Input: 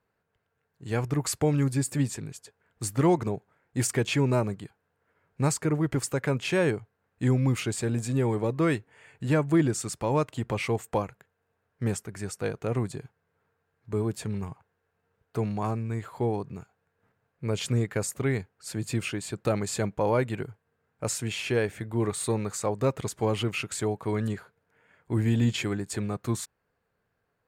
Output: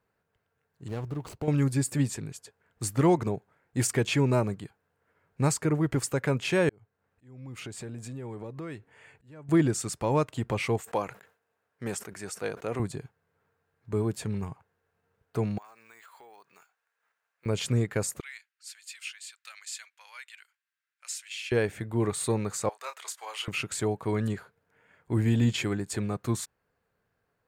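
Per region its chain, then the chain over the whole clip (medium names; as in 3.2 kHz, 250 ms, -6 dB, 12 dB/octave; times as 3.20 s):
0.88–1.48 s: median filter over 25 samples + compression 2.5:1, threshold -33 dBFS
6.69–9.49 s: treble shelf 5 kHz -3.5 dB + compression 4:1, threshold -38 dBFS + slow attack 410 ms
10.80–12.80 s: high-pass 400 Hz 6 dB/octave + decay stretcher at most 150 dB/s
15.58–17.46 s: high-pass 1.2 kHz + compression 4:1, threshold -50 dBFS + careless resampling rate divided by 2×, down none, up hold
18.20–21.52 s: Bessel high-pass 2.7 kHz, order 4 + treble shelf 7.4 kHz -8.5 dB
22.69–23.48 s: Bessel high-pass 1.3 kHz, order 4 + doubling 28 ms -8 dB
whole clip: none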